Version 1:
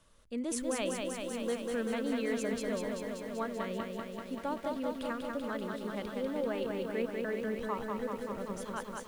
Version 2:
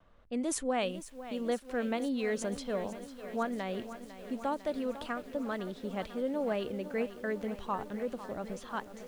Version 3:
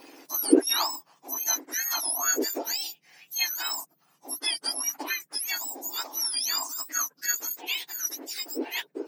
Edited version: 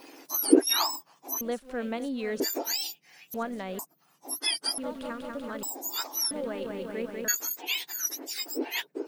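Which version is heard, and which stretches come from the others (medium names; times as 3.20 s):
3
1.41–2.40 s: from 2
3.34–3.79 s: from 2
4.78–5.63 s: from 1
6.31–7.28 s: from 1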